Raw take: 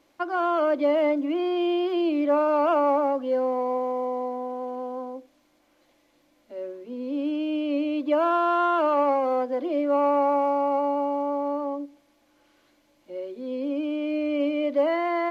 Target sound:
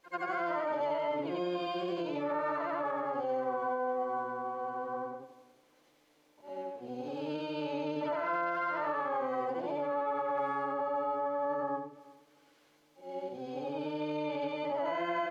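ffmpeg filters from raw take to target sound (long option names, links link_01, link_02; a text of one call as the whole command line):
ffmpeg -i in.wav -filter_complex "[0:a]afftfilt=real='re':imag='-im':win_size=8192:overlap=0.75,acrossover=split=350|1100[link_01][link_02][link_03];[link_01]acompressor=threshold=-43dB:ratio=5[link_04];[link_04][link_02][link_03]amix=inputs=3:normalize=0,alimiter=level_in=2.5dB:limit=-24dB:level=0:latency=1:release=81,volume=-2.5dB,asplit=3[link_05][link_06][link_07];[link_06]asetrate=22050,aresample=44100,atempo=2,volume=-11dB[link_08];[link_07]asetrate=66075,aresample=44100,atempo=0.66742,volume=-6dB[link_09];[link_05][link_08][link_09]amix=inputs=3:normalize=0,lowshelf=frequency=440:gain=-6.5,asplit=2[link_10][link_11];[link_11]adelay=362,lowpass=frequency=920:poles=1,volume=-19dB,asplit=2[link_12][link_13];[link_13]adelay=362,lowpass=frequency=920:poles=1,volume=0.23[link_14];[link_10][link_12][link_14]amix=inputs=3:normalize=0,adynamicequalizer=threshold=0.00224:dfrequency=2600:dqfactor=0.7:tfrequency=2600:tqfactor=0.7:attack=5:release=100:ratio=0.375:range=3:mode=cutabove:tftype=highshelf,volume=1dB" out.wav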